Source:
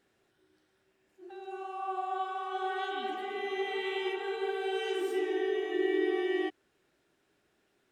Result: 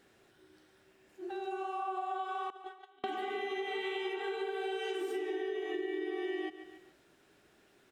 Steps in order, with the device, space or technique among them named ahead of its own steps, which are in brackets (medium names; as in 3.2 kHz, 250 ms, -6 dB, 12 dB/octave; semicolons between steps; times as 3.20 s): 2.50–3.04 s: gate -29 dBFS, range -37 dB; feedback delay 142 ms, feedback 39%, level -20 dB; serial compression, leveller first (compression 2:1, threshold -32 dBFS, peak gain reduction 4.5 dB; compression 4:1, threshold -43 dBFS, peak gain reduction 12 dB); trim +7.5 dB